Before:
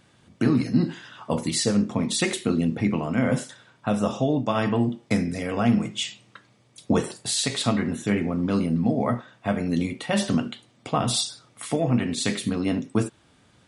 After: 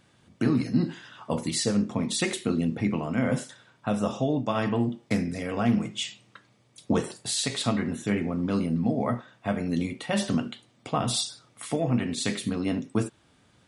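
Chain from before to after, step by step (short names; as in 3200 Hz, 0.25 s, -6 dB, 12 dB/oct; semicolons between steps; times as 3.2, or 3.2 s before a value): 4.53–7.3 Doppler distortion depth 0.12 ms; gain -3 dB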